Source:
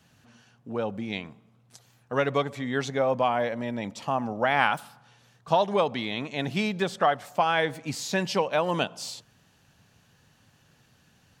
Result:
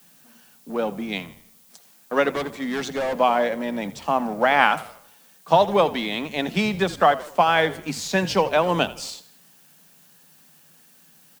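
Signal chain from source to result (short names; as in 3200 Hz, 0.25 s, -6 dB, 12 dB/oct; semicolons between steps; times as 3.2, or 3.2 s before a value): Chebyshev high-pass 150 Hz, order 8; in parallel at -4 dB: crossover distortion -38.5 dBFS; on the sum: added noise blue -57 dBFS; 2.35–3.16 overloaded stage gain 24.5 dB; on a send: frequency-shifting echo 81 ms, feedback 43%, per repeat -60 Hz, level -17 dB; on the sum: gain +2 dB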